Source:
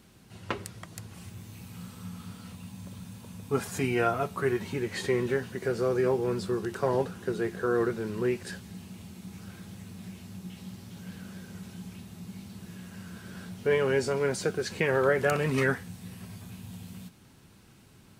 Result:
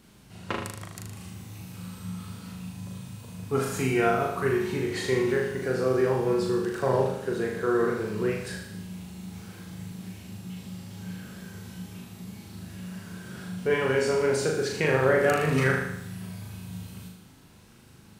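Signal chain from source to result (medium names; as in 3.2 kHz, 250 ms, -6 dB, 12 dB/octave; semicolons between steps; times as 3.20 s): flutter echo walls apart 6.6 m, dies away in 0.77 s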